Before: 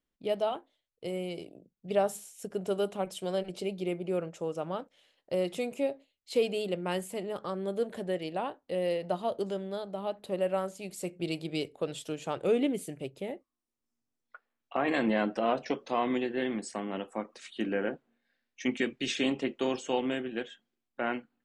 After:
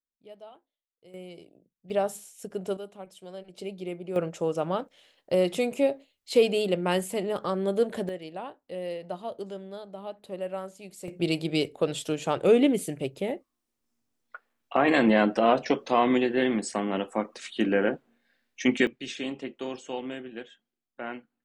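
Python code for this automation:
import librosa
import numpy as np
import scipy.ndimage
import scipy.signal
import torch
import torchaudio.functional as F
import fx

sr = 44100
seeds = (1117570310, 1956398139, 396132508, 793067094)

y = fx.gain(x, sr, db=fx.steps((0.0, -17.0), (1.14, -7.0), (1.9, 0.5), (2.77, -10.0), (3.58, -2.5), (4.16, 6.5), (8.09, -4.0), (11.08, 7.0), (18.87, -4.5)))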